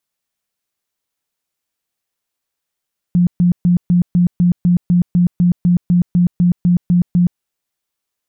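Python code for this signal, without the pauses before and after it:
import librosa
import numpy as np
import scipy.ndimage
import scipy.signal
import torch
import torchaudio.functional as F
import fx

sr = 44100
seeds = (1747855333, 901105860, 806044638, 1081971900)

y = fx.tone_burst(sr, hz=176.0, cycles=21, every_s=0.25, bursts=17, level_db=-8.5)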